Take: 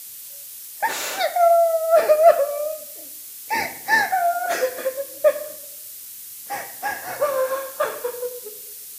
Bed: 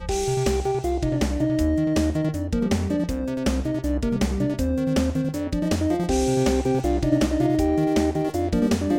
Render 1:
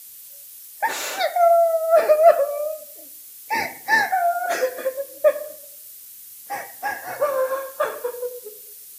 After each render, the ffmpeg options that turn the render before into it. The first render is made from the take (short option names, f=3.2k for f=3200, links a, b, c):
-af "afftdn=nr=6:nf=-38"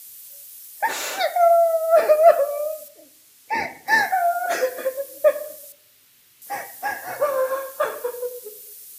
-filter_complex "[0:a]asettb=1/sr,asplit=3[a][b][c];[a]atrim=end=2.884[d];[b]atrim=start=2.88:end=3.88,asetpts=PTS-STARTPTS,afade=t=in:d=0.004:c=qsin,afade=t=out:st=0.996:d=0.004:c=qsin,aemphasis=mode=reproduction:type=50kf[e];[c]atrim=start=3.876[f];[d][e]acrossfade=d=0.004:c1=hsin:c2=qsin[g];[g][f]acrossfade=d=0.004:c1=qsin:c2=hsin,asettb=1/sr,asplit=3[h][i][j];[h]atrim=end=5.724[k];[i]atrim=start=5.72:end=6.42,asetpts=PTS-STARTPTS,afade=t=in:d=0.004:c=qsin,afade=t=out:st=0.696:d=0.004:c=qsin,acrossover=split=4000[l][m];[m]acompressor=threshold=-56dB:ratio=4:attack=1:release=60[n];[l][n]amix=inputs=2:normalize=0[o];[j]atrim=start=6.416[p];[k][o]acrossfade=d=0.004:c1=hsin:c2=qsin[q];[q][p]acrossfade=d=0.004:c1=qsin:c2=hsin"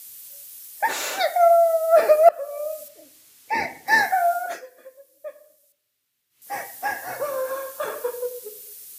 -filter_complex "[0:a]asettb=1/sr,asplit=3[a][b][c];[a]atrim=end=7.084[d];[b]atrim=start=7.08:end=7.88,asetpts=PTS-STARTPTS,afade=t=in:d=0.004:c=qsin,afade=t=out:st=0.796:d=0.004:c=qsin,acrossover=split=330|3000[e][f][g];[f]acompressor=threshold=-28dB:ratio=2.5:attack=3.2:release=140:knee=2.83:detection=peak[h];[e][h][g]amix=inputs=3:normalize=0[i];[c]atrim=start=7.876[j];[d][i]acrossfade=d=0.004:c1=hsin:c2=qsin[k];[k][j]acrossfade=d=0.004:c1=qsin:c2=hsin,asplit=4[l][m][n][o];[l]atrim=end=2.29,asetpts=PTS-STARTPTS,afade=t=out:st=2.286:d=0.004:c=hsin:silence=0.0630957[p];[m]atrim=start=2.29:end=4.61,asetpts=PTS-STARTPTS,afade=t=in:d=0.52:silence=0.0630957,afade=t=out:st=2.04:d=0.28:silence=0.1[q];[n]atrim=start=4.61:end=6.3,asetpts=PTS-STARTPTS,volume=-20dB[r];[o]atrim=start=6.3,asetpts=PTS-STARTPTS,afade=t=in:d=0.28:silence=0.1[s];[p][q][r][s]concat=n=4:v=0:a=1"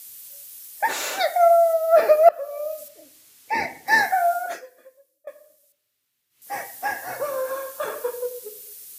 -filter_complex "[0:a]asettb=1/sr,asplit=3[a][b][c];[a]atrim=end=1.734[d];[b]atrim=start=1.73:end=2.78,asetpts=PTS-STARTPTS,afade=t=in:d=0.004:c=qsin,afade=t=out:st=1.046:d=0.004:c=qsin,equalizer=f=8.6k:w=1.9:g=-7.5[e];[c]atrim=start=2.776[f];[d][e]acrossfade=d=0.004:c1=hsin:c2=qsin[g];[g][f]acrossfade=d=0.004:c1=qsin:c2=hsin,asplit=2[h][i];[h]atrim=end=5.27,asetpts=PTS-STARTPTS,afade=t=out:st=4.55:d=0.72:silence=0.0841395[j];[i]atrim=start=5.27,asetpts=PTS-STARTPTS,afade=t=in:d=0.004:c=hsin:silence=0.0841395[k];[j][k]concat=n=2:v=0:a=1"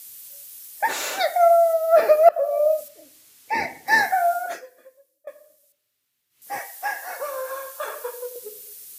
-filter_complex "[0:a]asettb=1/sr,asplit=3[a][b][c];[a]atrim=end=2.364[d];[b]atrim=start=2.36:end=2.81,asetpts=PTS-STARTPTS,afade=t=in:d=0.004:c=qsin,afade=t=out:st=0.446:d=0.004:c=qsin,equalizer=f=690:t=o:w=0.76:g=13.5[e];[c]atrim=start=2.806[f];[d][e]acrossfade=d=0.004:c1=hsin:c2=qsin[g];[g][f]acrossfade=d=0.004:c1=qsin:c2=hsin,asettb=1/sr,asplit=3[h][i][j];[h]atrim=end=6.594[k];[i]atrim=start=6.59:end=8.36,asetpts=PTS-STARTPTS,afade=t=in:d=0.004:c=qsin,afade=t=out:st=1.766:d=0.004:c=qsin,highpass=600[l];[j]atrim=start=8.356[m];[k][l]acrossfade=d=0.004:c1=hsin:c2=qsin[n];[n][m]acrossfade=d=0.004:c1=qsin:c2=hsin"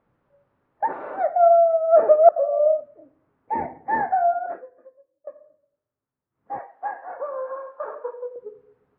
-af "lowpass=f=1.2k:w=0.5412,lowpass=f=1.2k:w=1.3066,lowshelf=f=330:g=4"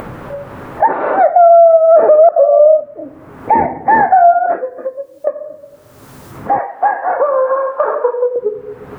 -af "acompressor=mode=upward:threshold=-20dB:ratio=2.5,alimiter=level_in=13.5dB:limit=-1dB:release=50:level=0:latency=1"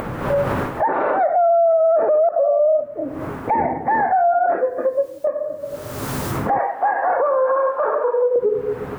-af "dynaudnorm=f=180:g=3:m=12.5dB,alimiter=limit=-11dB:level=0:latency=1:release=58"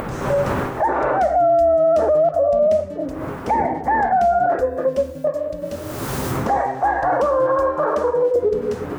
-filter_complex "[1:a]volume=-11.5dB[a];[0:a][a]amix=inputs=2:normalize=0"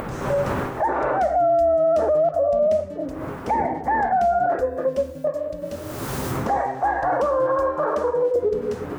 -af "volume=-3dB"